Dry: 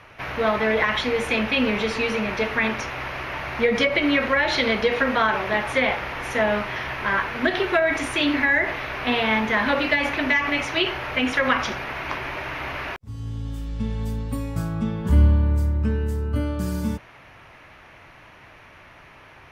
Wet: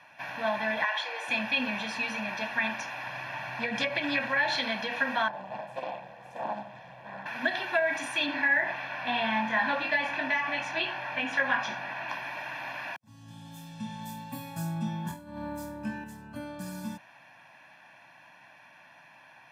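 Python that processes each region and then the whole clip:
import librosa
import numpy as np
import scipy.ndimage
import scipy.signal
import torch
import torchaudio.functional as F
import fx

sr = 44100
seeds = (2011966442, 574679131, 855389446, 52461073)

y = fx.chain(x, sr, fx.steep_highpass(hz=330.0, slope=96),
    fx.high_shelf(hz=7300.0, db=-9.0), at=(0.84, 1.28))
y = fx.chain(y, sr, fx.peak_eq(hz=110.0, db=14.5, octaves=0.5),
    fx.doppler_dist(depth_ms=0.21), at=(3.06, 4.56))
y = fx.chain(y, sr, fx.curve_eq(hz=(180.0, 260.0, 490.0, 1300.0), db=(0, -20, -1, -19)),
    fx.echo_multitap(ms=(48, 57, 73, 103, 203), db=(-9.0, -11.0, -6.0, -12.0, -17.0)),
    fx.doppler_dist(depth_ms=0.75), at=(5.28, 7.26))
y = fx.chain(y, sr, fx.lowpass(hz=3500.0, slope=6),
    fx.doubler(ms=22.0, db=-3.5), at=(8.26, 12.09))
y = fx.chain(y, sr, fx.high_shelf(hz=9000.0, db=8.0),
    fx.over_compress(threshold_db=-18.0, ratio=-0.5),
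    fx.room_flutter(wall_m=4.1, rt60_s=0.28), at=(13.28, 16.04))
y = scipy.signal.sosfilt(scipy.signal.butter(4, 150.0, 'highpass', fs=sr, output='sos'), y)
y = fx.low_shelf(y, sr, hz=380.0, db=-5.5)
y = y + 0.9 * np.pad(y, (int(1.2 * sr / 1000.0), 0))[:len(y)]
y = y * librosa.db_to_amplitude(-8.5)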